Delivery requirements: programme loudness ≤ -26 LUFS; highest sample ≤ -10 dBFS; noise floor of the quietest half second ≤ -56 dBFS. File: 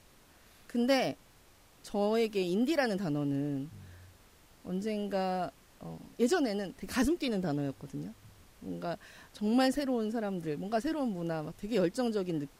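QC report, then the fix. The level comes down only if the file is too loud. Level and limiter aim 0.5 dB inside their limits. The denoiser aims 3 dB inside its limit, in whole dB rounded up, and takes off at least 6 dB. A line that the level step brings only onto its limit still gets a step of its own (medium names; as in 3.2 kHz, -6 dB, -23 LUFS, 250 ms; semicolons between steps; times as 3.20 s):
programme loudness -32.5 LUFS: pass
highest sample -15.0 dBFS: pass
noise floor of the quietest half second -60 dBFS: pass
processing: none needed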